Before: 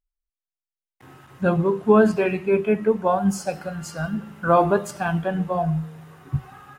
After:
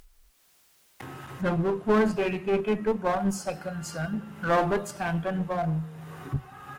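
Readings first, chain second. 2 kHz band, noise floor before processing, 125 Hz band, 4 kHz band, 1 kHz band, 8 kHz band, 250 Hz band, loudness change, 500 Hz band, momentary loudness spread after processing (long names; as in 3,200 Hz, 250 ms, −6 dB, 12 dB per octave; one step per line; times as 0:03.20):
−3.5 dB, below −85 dBFS, −5.0 dB, 0.0 dB, −6.0 dB, −3.0 dB, −5.5 dB, −6.0 dB, −6.5 dB, 13 LU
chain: upward compression, threshold −27 dBFS
asymmetric clip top −22.5 dBFS
level −3.5 dB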